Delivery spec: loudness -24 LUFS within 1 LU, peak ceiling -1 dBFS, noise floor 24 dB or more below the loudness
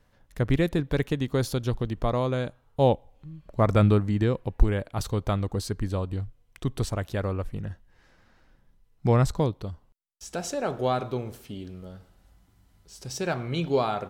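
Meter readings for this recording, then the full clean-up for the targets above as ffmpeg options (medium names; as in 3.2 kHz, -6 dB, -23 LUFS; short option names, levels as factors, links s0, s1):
loudness -27.5 LUFS; peak level -6.5 dBFS; loudness target -24.0 LUFS
-> -af "volume=1.5"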